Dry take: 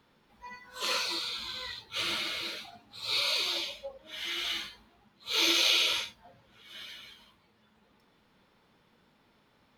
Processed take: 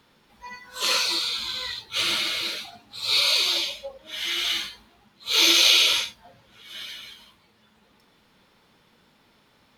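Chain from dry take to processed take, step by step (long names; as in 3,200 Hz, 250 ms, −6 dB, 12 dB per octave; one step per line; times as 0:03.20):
parametric band 9,200 Hz +6 dB 2.9 octaves
level +4.5 dB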